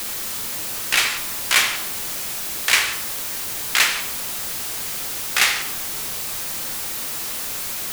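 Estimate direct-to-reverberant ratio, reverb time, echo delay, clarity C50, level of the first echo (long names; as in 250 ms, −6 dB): 5.5 dB, 1.1 s, no echo audible, 8.5 dB, no echo audible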